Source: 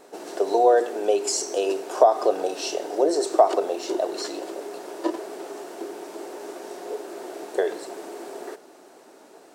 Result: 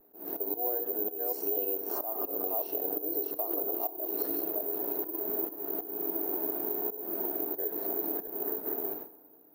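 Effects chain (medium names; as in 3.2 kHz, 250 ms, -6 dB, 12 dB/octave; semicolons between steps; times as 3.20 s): chunks repeated in reverse 331 ms, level -5 dB; gate with hold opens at -36 dBFS; tilt EQ -4.5 dB/octave; band-stop 530 Hz, Q 12; slow attack 481 ms; compression 12:1, threshold -34 dBFS, peak gain reduction 19.5 dB; FDN reverb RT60 1.2 s, low-frequency decay 1.1×, high-frequency decay 0.5×, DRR 13 dB; careless resampling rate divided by 3×, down filtered, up zero stuff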